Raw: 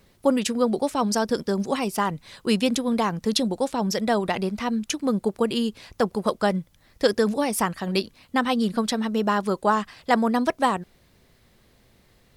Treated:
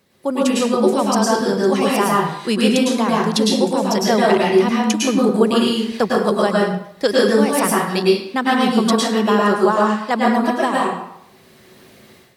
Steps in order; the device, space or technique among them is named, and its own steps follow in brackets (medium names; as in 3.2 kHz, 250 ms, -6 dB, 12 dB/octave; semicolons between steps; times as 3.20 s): far laptop microphone (reverberation RT60 0.70 s, pre-delay 99 ms, DRR -4.5 dB; high-pass 140 Hz 12 dB/octave; level rider); trim -2 dB